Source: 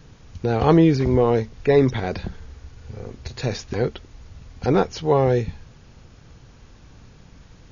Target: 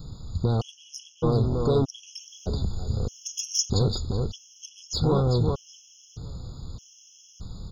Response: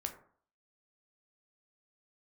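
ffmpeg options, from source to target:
-filter_complex "[0:a]bass=frequency=250:gain=9,treble=frequency=4000:gain=12,asoftclip=type=tanh:threshold=-12.5dB,acompressor=threshold=-20dB:ratio=6,asuperstop=centerf=2000:order=12:qfactor=1.4,asetnsamples=nb_out_samples=441:pad=0,asendcmd='2.16 highshelf g 10;3.68 highshelf g 4.5',highshelf=frequency=3800:gain=3.5,asplit=2[link_01][link_02];[link_02]adelay=379,lowpass=frequency=4100:poles=1,volume=-4dB,asplit=2[link_03][link_04];[link_04]adelay=379,lowpass=frequency=4100:poles=1,volume=0.24,asplit=2[link_05][link_06];[link_06]adelay=379,lowpass=frequency=4100:poles=1,volume=0.24[link_07];[link_01][link_03][link_05][link_07]amix=inputs=4:normalize=0,afftfilt=real='re*gt(sin(2*PI*0.81*pts/sr)*(1-2*mod(floor(b*sr/1024/1700),2)),0)':imag='im*gt(sin(2*PI*0.81*pts/sr)*(1-2*mod(floor(b*sr/1024/1700),2)),0)':win_size=1024:overlap=0.75"

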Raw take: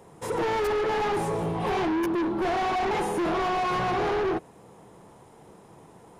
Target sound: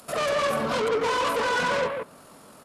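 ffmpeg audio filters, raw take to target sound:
ffmpeg -i in.wav -filter_complex "[0:a]asetrate=103194,aresample=44100,acrossover=split=130|5800[link_01][link_02][link_03];[link_01]acompressor=threshold=-57dB:ratio=6[link_04];[link_02]aecho=1:1:148:0.562[link_05];[link_03]acompressor=mode=upward:threshold=-54dB:ratio=2.5[link_06];[link_04][link_05][link_06]amix=inputs=3:normalize=0,asetrate=25476,aresample=44100,atempo=1.73107,highshelf=frequency=3400:gain=8" out.wav

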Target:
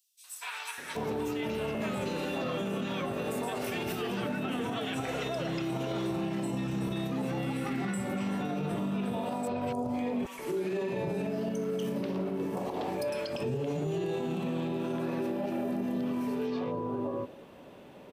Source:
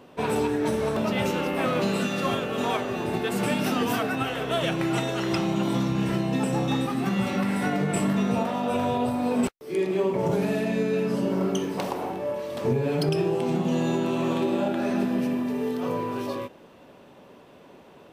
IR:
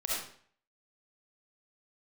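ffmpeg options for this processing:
-filter_complex "[0:a]acrossover=split=1200|5500[link_01][link_02][link_03];[link_02]adelay=240[link_04];[link_01]adelay=780[link_05];[link_05][link_04][link_03]amix=inputs=3:normalize=0,asplit=2[link_06][link_07];[1:a]atrim=start_sample=2205,adelay=135[link_08];[link_07][link_08]afir=irnorm=-1:irlink=0,volume=-28.5dB[link_09];[link_06][link_09]amix=inputs=2:normalize=0,alimiter=level_in=1dB:limit=-24dB:level=0:latency=1:release=88,volume=-1dB"

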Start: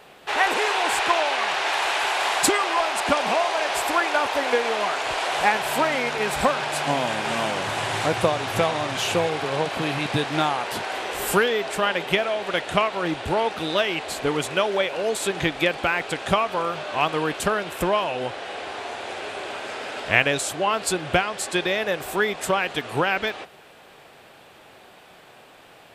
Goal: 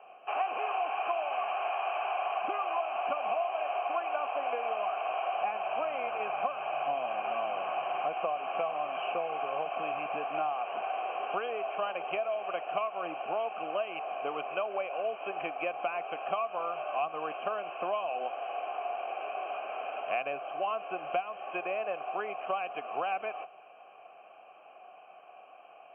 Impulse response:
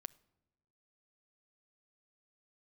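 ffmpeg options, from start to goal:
-filter_complex "[0:a]asplit=3[link_01][link_02][link_03];[link_01]bandpass=frequency=730:width_type=q:width=8,volume=0dB[link_04];[link_02]bandpass=frequency=1090:width_type=q:width=8,volume=-6dB[link_05];[link_03]bandpass=frequency=2440:width_type=q:width=8,volume=-9dB[link_06];[link_04][link_05][link_06]amix=inputs=3:normalize=0,acrossover=split=250|2500[link_07][link_08][link_09];[link_07]acompressor=threshold=-57dB:ratio=4[link_10];[link_08]acompressor=threshold=-34dB:ratio=4[link_11];[link_09]acompressor=threshold=-52dB:ratio=4[link_12];[link_10][link_11][link_12]amix=inputs=3:normalize=0,afftfilt=real='re*between(b*sr/4096,130,3200)':imag='im*between(b*sr/4096,130,3200)':win_size=4096:overlap=0.75,volume=4dB"

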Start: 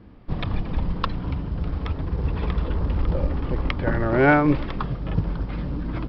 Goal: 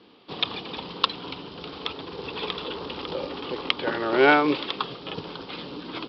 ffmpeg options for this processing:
ffmpeg -i in.wav -af "aexciter=amount=3.4:drive=9:freq=2900,highpass=410,equalizer=frequency=420:width_type=q:width=4:gain=4,equalizer=frequency=620:width_type=q:width=4:gain=-6,equalizer=frequency=1700:width_type=q:width=4:gain=-3,lowpass=frequency=4200:width=0.5412,lowpass=frequency=4200:width=1.3066,volume=2dB" out.wav

